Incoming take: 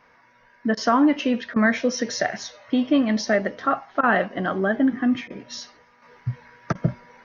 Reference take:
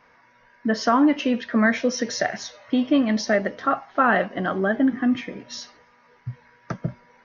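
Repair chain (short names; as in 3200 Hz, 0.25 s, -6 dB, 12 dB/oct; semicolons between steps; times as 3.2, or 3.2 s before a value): interpolate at 0.75/1.54/4.01/5.28/6.73, 20 ms; gain correction -5.5 dB, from 6.02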